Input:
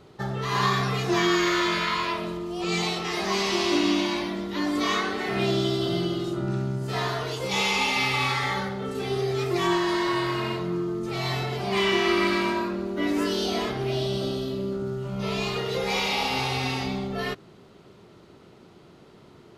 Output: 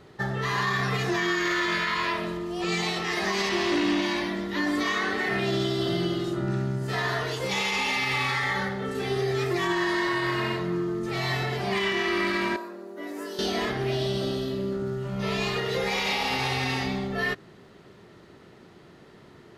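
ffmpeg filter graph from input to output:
ffmpeg -i in.wav -filter_complex "[0:a]asettb=1/sr,asplit=3[link_01][link_02][link_03];[link_01]atrim=end=3.494[link_04];[link_02]atrim=start=3.49:end=4.02,asetpts=PTS-STARTPTS,afade=type=in:duration=0.004:curve=qsin,afade=type=out:start_time=0.526:duration=0.004:curve=qsin,asoftclip=type=hard:threshold=-20dB,lowpass=frequency=3800:poles=1[link_05];[link_03]atrim=start=4.016[link_06];[link_04][link_05]acrossfade=duration=0.004:curve1=hsin:curve2=qsin[link_07];[link_07][link_06]acrossfade=duration=0.004:curve1=qsin:curve2=hsin,asettb=1/sr,asplit=3[link_08][link_09][link_10];[link_08]atrim=end=12.564[link_11];[link_09]atrim=start=12.56:end=13.39,asetpts=PTS-STARTPTS,afade=type=in:duration=0.004:curve=qsin,afade=type=out:start_time=0.826:duration=0.004:curve=qsin,highpass=520,equalizer=frequency=2600:width=0.38:gain=-15[link_12];[link_10]atrim=start=13.386[link_13];[link_11][link_12]acrossfade=duration=0.004:curve1=hsin:curve2=qsin[link_14];[link_14][link_13]acrossfade=duration=0.004:curve1=qsin:curve2=hsin,equalizer=frequency=1800:width_type=o:width=0.3:gain=9,alimiter=limit=-17.5dB:level=0:latency=1:release=41" out.wav

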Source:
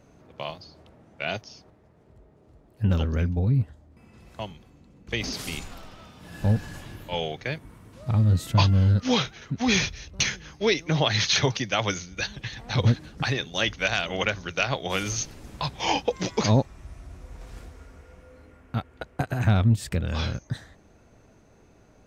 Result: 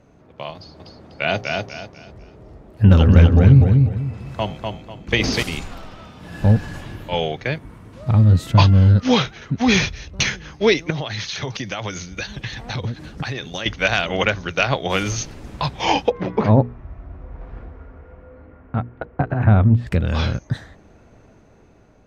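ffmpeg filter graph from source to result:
ffmpeg -i in.wav -filter_complex "[0:a]asettb=1/sr,asplit=3[link_01][link_02][link_03];[link_01]atrim=end=0.554[link_04];[link_02]atrim=start=0.55:end=5.43,asetpts=PTS-STARTPTS,afade=type=in:duration=0.004:curve=qsin,afade=type=out:start_time=4.876:duration=0.004:curve=qsin,bandreject=frequency=57.81:width_type=h:width=4,bandreject=frequency=115.62:width_type=h:width=4,bandreject=frequency=173.43:width_type=h:width=4,bandreject=frequency=231.24:width_type=h:width=4,bandreject=frequency=289.05:width_type=h:width=4,bandreject=frequency=346.86:width_type=h:width=4,bandreject=frequency=404.67:width_type=h:width=4,bandreject=frequency=462.48:width_type=h:width=4,bandreject=frequency=520.29:width_type=h:width=4,bandreject=frequency=578.1:width_type=h:width=4,bandreject=frequency=635.91:width_type=h:width=4,bandreject=frequency=693.72:width_type=h:width=4,bandreject=frequency=751.53:width_type=h:width=4,bandreject=frequency=809.34:width_type=h:width=4,acontrast=27,aecho=1:1:247|494|741|988:0.631|0.183|0.0531|0.0154,atrim=end_sample=215208[link_05];[link_03]atrim=start=5.426[link_06];[link_04][link_05]acrossfade=duration=0.004:curve1=hsin:curve2=qsin[link_07];[link_07][link_06]acrossfade=duration=0.004:curve1=qsin:curve2=hsin,asettb=1/sr,asplit=3[link_08][link_09][link_10];[link_08]atrim=end=10.904[link_11];[link_09]atrim=start=10.9:end=13.66,asetpts=PTS-STARTPTS,afade=type=in:duration=0.004:curve=qsin,afade=type=out:start_time=2.756:duration=0.004:curve=qsin,highshelf=frequency=5500:gain=5.5,acompressor=threshold=-29dB:ratio=10:attack=3.2:release=140:knee=1:detection=peak[link_12];[link_10]atrim=start=13.656[link_13];[link_11][link_12]acrossfade=duration=0.004:curve1=hsin:curve2=qsin[link_14];[link_14][link_13]acrossfade=duration=0.004:curve1=qsin:curve2=hsin,asettb=1/sr,asplit=3[link_15][link_16][link_17];[link_15]atrim=end=16.104[link_18];[link_16]atrim=start=16.1:end=19.87,asetpts=PTS-STARTPTS,afade=type=in:duration=0.004:curve=qsin,afade=type=out:start_time=3.766:duration=0.004:curve=qsin,lowpass=1600,bandreject=frequency=60:width_type=h:width=6,bandreject=frequency=120:width_type=h:width=6,bandreject=frequency=180:width_type=h:width=6,bandreject=frequency=240:width_type=h:width=6,bandreject=frequency=300:width_type=h:width=6,bandreject=frequency=360:width_type=h:width=6,bandreject=frequency=420:width_type=h:width=6,bandreject=frequency=480:width_type=h:width=6[link_19];[link_17]atrim=start=19.866[link_20];[link_18][link_19]acrossfade=duration=0.004:curve1=hsin:curve2=qsin[link_21];[link_21][link_20]acrossfade=duration=0.004:curve1=qsin:curve2=hsin,aemphasis=mode=reproduction:type=cd,dynaudnorm=framelen=560:gausssize=5:maxgain=5dB,volume=2.5dB" out.wav

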